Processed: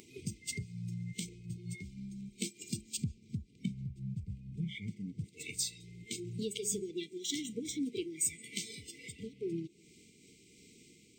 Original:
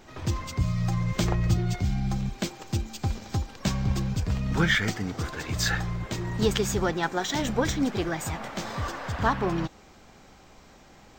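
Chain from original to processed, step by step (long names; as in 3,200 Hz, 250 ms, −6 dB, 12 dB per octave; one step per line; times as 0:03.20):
0:02.97–0:05.24: bass and treble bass +12 dB, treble −5 dB
downward compressor 10 to 1, threshold −36 dBFS, peak gain reduction 26 dB
high-pass filter 130 Hz 12 dB per octave
upward compression, threshold −45 dBFS
linear-phase brick-wall band-stop 480–2,000 Hz
parametric band 8,400 Hz +14.5 dB 0.25 octaves
hum removal 207.9 Hz, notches 5
convolution reverb RT60 0.65 s, pre-delay 100 ms, DRR 14.5 dB
noise reduction from a noise print of the clip's start 12 dB
amplitude modulation by smooth noise, depth 55%
level +6.5 dB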